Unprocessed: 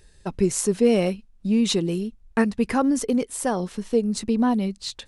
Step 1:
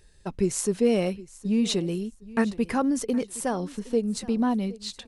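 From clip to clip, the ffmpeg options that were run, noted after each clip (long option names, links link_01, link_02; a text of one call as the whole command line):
ffmpeg -i in.wav -af "aecho=1:1:767|1534:0.106|0.0244,volume=-3.5dB" out.wav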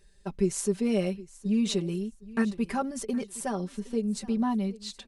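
ffmpeg -i in.wav -af "aecho=1:1:5.1:0.81,volume=-6dB" out.wav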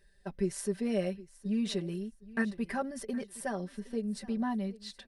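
ffmpeg -i in.wav -af "superequalizer=8b=1.58:11b=2.24:15b=0.501,volume=-5.5dB" out.wav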